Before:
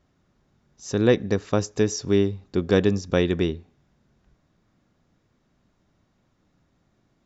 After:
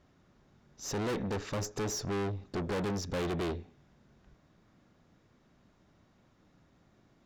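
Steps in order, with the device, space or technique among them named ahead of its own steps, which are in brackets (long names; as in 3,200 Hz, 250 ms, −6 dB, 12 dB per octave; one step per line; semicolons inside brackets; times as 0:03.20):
0:01.54–0:02.81: dynamic equaliser 3,000 Hz, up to −6 dB, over −44 dBFS, Q 1.1
tube preamp driven hard (tube saturation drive 35 dB, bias 0.45; low-shelf EQ 170 Hz −3 dB; high-shelf EQ 6,500 Hz −6 dB)
level +4.5 dB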